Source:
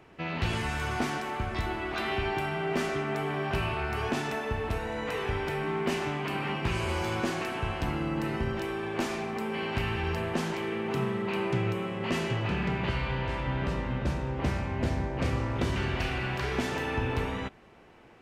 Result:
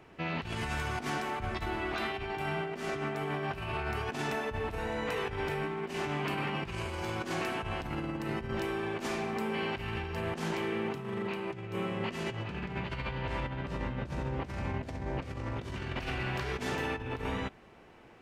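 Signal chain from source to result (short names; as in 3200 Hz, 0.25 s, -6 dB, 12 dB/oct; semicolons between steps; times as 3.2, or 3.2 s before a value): negative-ratio compressor -32 dBFS, ratio -0.5; gain -2.5 dB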